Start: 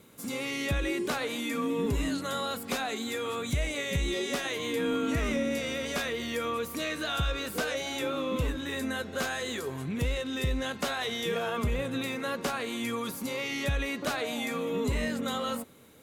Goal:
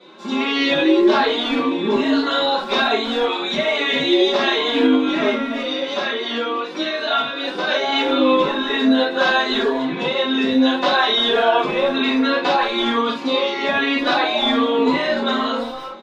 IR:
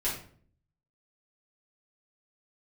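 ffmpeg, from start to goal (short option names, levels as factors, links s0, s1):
-filter_complex "[0:a]equalizer=f=2900:w=0.56:g=-4,bandreject=f=60:t=h:w=6,bandreject=f=120:t=h:w=6,bandreject=f=180:t=h:w=6,bandreject=f=240:t=h:w=6,bandreject=f=300:t=h:w=6,bandreject=f=360:t=h:w=6,asettb=1/sr,asplit=3[s0][s1][s2];[s0]atrim=end=5.284[s3];[s1]atrim=start=5.28:end=7.67,asetpts=PTS-STARTPTS,afade=t=in:d=0.004:c=qsin,afade=t=out:st=2.386:d=0.004:c=qsin,acompressor=threshold=0.02:ratio=16[s4];[s2]atrim=start=7.666[s5];[s3][s4]acrossfade=d=0.004:c1=hsin:c2=qsin[s6];[s6][s5]acrossfade=d=0.004:c1=qsin:c2=hsin,highpass=f=260:w=0.5412,highpass=f=260:w=1.3066,equalizer=f=430:t=q:w=4:g=-5,equalizer=f=690:t=q:w=4:g=3,equalizer=f=1000:t=q:w=4:g=4,equalizer=f=2100:t=q:w=4:g=-3,equalizer=f=3800:t=q:w=4:g=6,lowpass=f=4200:w=0.5412,lowpass=f=4200:w=1.3066,asplit=2[s7][s8];[s8]adelay=330,highpass=300,lowpass=3400,asoftclip=type=hard:threshold=0.0299,volume=0.251[s9];[s7][s9]amix=inputs=2:normalize=0[s10];[1:a]atrim=start_sample=2205,afade=t=out:st=0.14:d=0.01,atrim=end_sample=6615[s11];[s10][s11]afir=irnorm=-1:irlink=0,alimiter=level_in=7.08:limit=0.891:release=50:level=0:latency=1,asplit=2[s12][s13];[s13]adelay=3.5,afreqshift=1.2[s14];[s12][s14]amix=inputs=2:normalize=1,volume=0.708"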